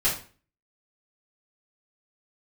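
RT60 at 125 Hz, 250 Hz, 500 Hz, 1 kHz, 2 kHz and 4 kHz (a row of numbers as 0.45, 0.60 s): 0.50, 0.45, 0.40, 0.40, 0.40, 0.35 s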